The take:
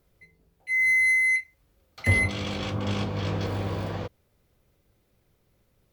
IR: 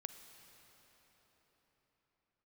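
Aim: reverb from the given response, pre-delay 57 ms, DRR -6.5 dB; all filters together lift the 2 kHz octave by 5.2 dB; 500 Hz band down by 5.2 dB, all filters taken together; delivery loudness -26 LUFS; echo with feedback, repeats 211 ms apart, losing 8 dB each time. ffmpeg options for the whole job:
-filter_complex "[0:a]equalizer=f=500:t=o:g=-6.5,equalizer=f=2000:t=o:g=5.5,aecho=1:1:211|422|633|844|1055:0.398|0.159|0.0637|0.0255|0.0102,asplit=2[s0][s1];[1:a]atrim=start_sample=2205,adelay=57[s2];[s1][s2]afir=irnorm=-1:irlink=0,volume=3.16[s3];[s0][s3]amix=inputs=2:normalize=0,volume=0.299"

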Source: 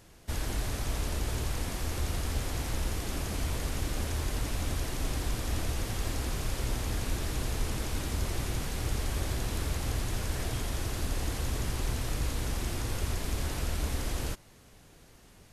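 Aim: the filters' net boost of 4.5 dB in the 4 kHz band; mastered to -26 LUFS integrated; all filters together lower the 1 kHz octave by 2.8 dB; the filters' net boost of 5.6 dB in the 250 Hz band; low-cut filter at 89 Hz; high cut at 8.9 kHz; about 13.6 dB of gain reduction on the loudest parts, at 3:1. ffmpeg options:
-af "highpass=89,lowpass=8900,equalizer=f=250:t=o:g=7.5,equalizer=f=1000:t=o:g=-4.5,equalizer=f=4000:t=o:g=6,acompressor=threshold=0.00355:ratio=3,volume=11.9"

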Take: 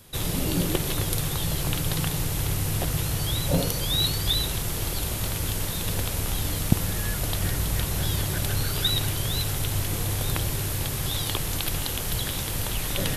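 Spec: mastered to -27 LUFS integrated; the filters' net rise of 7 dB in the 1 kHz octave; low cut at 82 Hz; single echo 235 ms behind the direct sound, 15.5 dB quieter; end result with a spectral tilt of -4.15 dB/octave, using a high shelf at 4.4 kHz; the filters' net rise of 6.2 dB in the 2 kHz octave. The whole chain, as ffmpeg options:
-af "highpass=82,equalizer=f=1000:t=o:g=7.5,equalizer=f=2000:t=o:g=7,highshelf=f=4400:g=-7,aecho=1:1:235:0.168"

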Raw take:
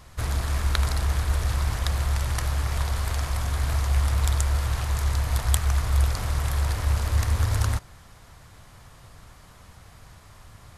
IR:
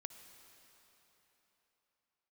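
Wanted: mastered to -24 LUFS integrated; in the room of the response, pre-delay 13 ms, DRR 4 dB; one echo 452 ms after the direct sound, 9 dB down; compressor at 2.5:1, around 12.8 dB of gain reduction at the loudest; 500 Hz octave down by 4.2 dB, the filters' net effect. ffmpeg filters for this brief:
-filter_complex "[0:a]equalizer=f=500:t=o:g=-5.5,acompressor=threshold=0.0126:ratio=2.5,aecho=1:1:452:0.355,asplit=2[s0][s1];[1:a]atrim=start_sample=2205,adelay=13[s2];[s1][s2]afir=irnorm=-1:irlink=0,volume=1[s3];[s0][s3]amix=inputs=2:normalize=0,volume=2.82"

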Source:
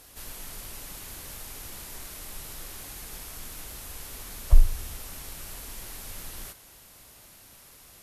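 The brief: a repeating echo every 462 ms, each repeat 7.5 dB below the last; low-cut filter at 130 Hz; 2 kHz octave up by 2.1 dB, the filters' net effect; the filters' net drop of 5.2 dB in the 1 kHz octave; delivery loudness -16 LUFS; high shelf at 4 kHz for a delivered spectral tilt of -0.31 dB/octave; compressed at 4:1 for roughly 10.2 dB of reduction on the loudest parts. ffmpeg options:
-af "highpass=130,equalizer=f=1000:t=o:g=-8.5,equalizer=f=2000:t=o:g=3.5,highshelf=f=4000:g=5.5,acompressor=threshold=0.00891:ratio=4,aecho=1:1:462|924|1386|1848|2310:0.422|0.177|0.0744|0.0312|0.0131,volume=16.8"

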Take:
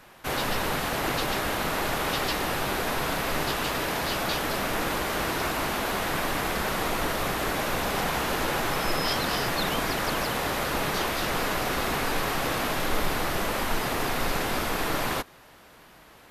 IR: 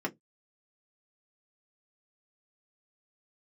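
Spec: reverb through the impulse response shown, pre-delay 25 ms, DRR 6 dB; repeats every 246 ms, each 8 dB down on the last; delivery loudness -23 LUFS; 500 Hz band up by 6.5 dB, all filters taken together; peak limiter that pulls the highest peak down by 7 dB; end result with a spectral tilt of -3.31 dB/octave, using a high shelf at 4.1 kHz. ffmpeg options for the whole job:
-filter_complex "[0:a]equalizer=f=500:t=o:g=8,highshelf=f=4100:g=7,alimiter=limit=0.141:level=0:latency=1,aecho=1:1:246|492|738|984|1230:0.398|0.159|0.0637|0.0255|0.0102,asplit=2[s0][s1];[1:a]atrim=start_sample=2205,adelay=25[s2];[s1][s2]afir=irnorm=-1:irlink=0,volume=0.266[s3];[s0][s3]amix=inputs=2:normalize=0,volume=1.19"

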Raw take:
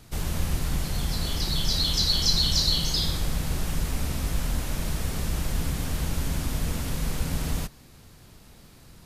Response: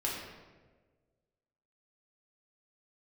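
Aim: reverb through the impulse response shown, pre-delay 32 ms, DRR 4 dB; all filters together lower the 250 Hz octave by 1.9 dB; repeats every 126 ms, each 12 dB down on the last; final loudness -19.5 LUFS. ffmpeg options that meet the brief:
-filter_complex "[0:a]equalizer=f=250:t=o:g=-3,aecho=1:1:126|252|378:0.251|0.0628|0.0157,asplit=2[s0][s1];[1:a]atrim=start_sample=2205,adelay=32[s2];[s1][s2]afir=irnorm=-1:irlink=0,volume=0.355[s3];[s0][s3]amix=inputs=2:normalize=0,volume=2.11"

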